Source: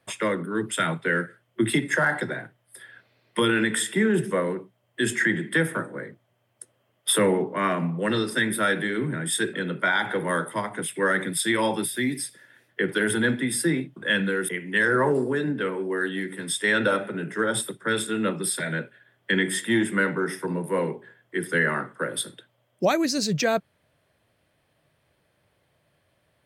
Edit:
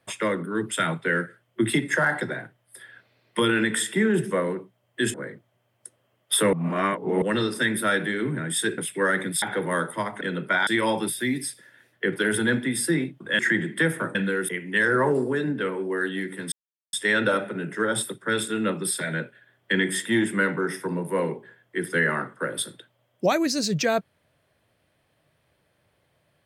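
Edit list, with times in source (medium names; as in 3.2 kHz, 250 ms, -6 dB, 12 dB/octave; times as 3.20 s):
5.14–5.90 s: move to 14.15 s
7.29–7.98 s: reverse
9.54–10.00 s: swap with 10.79–11.43 s
16.52 s: insert silence 0.41 s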